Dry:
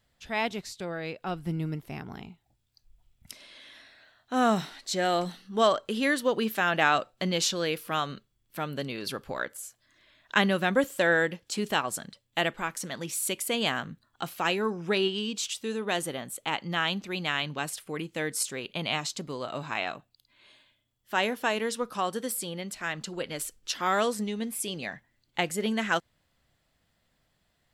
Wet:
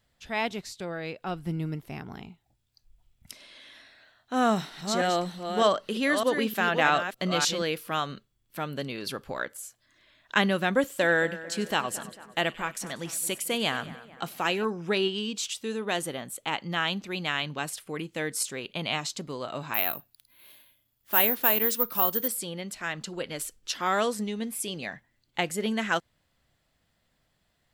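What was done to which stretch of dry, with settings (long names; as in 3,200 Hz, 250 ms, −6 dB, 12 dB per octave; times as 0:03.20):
0:04.41–0:07.62: delay that plays each chunk backwards 304 ms, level −7 dB
0:10.80–0:14.65: echo with a time of its own for lows and highs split 2,200 Hz, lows 223 ms, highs 95 ms, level −16 dB
0:19.74–0:22.28: bad sample-rate conversion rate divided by 3×, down none, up zero stuff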